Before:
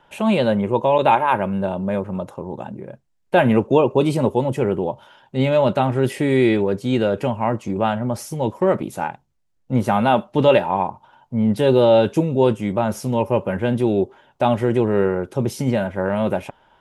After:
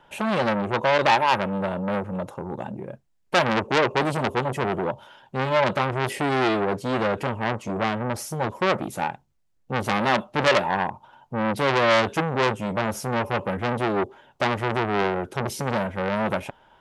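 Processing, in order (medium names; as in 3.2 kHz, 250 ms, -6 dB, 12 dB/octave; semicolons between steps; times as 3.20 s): transformer saturation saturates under 2.8 kHz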